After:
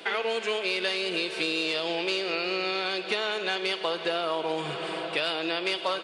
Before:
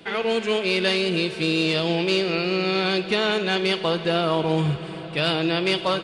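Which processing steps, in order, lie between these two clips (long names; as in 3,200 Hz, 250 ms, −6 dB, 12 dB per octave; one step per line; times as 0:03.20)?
high-pass filter 450 Hz 12 dB per octave
downward compressor 4 to 1, threshold −32 dBFS, peak gain reduction 12 dB
level +5.5 dB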